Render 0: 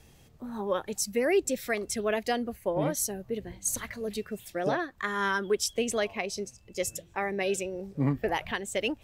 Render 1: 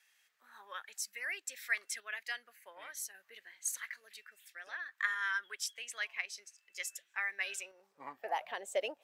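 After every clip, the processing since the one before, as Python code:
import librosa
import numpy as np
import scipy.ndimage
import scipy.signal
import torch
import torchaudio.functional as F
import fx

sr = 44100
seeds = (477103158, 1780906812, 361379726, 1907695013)

y = fx.filter_sweep_highpass(x, sr, from_hz=1700.0, to_hz=610.0, start_s=7.33, end_s=8.56, q=2.6)
y = fx.tremolo_random(y, sr, seeds[0], hz=3.5, depth_pct=55)
y = y * 10.0 ** (-6.5 / 20.0)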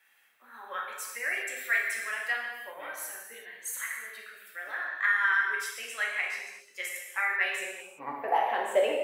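y = fx.peak_eq(x, sr, hz=5700.0, db=-15.0, octaves=1.7)
y = fx.rev_gated(y, sr, seeds[1], gate_ms=410, shape='falling', drr_db=-3.0)
y = y * 10.0 ** (8.0 / 20.0)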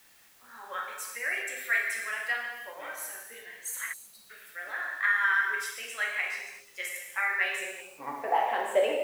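y = fx.spec_erase(x, sr, start_s=3.93, length_s=0.37, low_hz=230.0, high_hz=3800.0)
y = fx.quant_dither(y, sr, seeds[2], bits=10, dither='triangular')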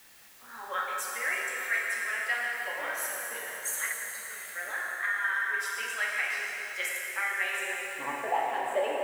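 y = fx.rider(x, sr, range_db=5, speed_s=0.5)
y = fx.rev_plate(y, sr, seeds[3], rt60_s=5.0, hf_ratio=0.85, predelay_ms=85, drr_db=2.5)
y = y * 10.0 ** (-1.5 / 20.0)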